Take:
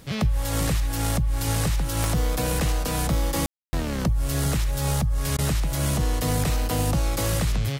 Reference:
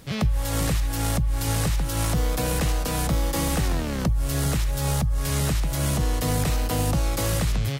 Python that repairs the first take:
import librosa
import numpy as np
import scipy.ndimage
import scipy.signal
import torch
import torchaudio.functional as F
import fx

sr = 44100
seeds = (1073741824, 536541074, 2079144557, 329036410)

y = fx.fix_declick_ar(x, sr, threshold=10.0)
y = fx.fix_ambience(y, sr, seeds[0], print_start_s=0.0, print_end_s=0.5, start_s=3.46, end_s=3.73)
y = fx.fix_interpolate(y, sr, at_s=(5.37,), length_ms=14.0)